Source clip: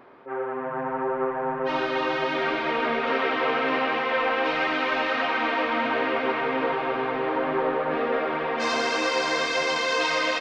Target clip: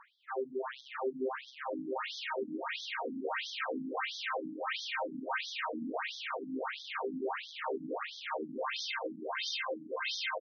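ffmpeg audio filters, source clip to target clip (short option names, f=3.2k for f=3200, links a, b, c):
-af "aecho=1:1:76:0.355,asoftclip=type=hard:threshold=-28dB,afftfilt=real='re*between(b*sr/1024,220*pow(4600/220,0.5+0.5*sin(2*PI*1.5*pts/sr))/1.41,220*pow(4600/220,0.5+0.5*sin(2*PI*1.5*pts/sr))*1.41)':imag='im*between(b*sr/1024,220*pow(4600/220,0.5+0.5*sin(2*PI*1.5*pts/sr))/1.41,220*pow(4600/220,0.5+0.5*sin(2*PI*1.5*pts/sr))*1.41)':win_size=1024:overlap=0.75"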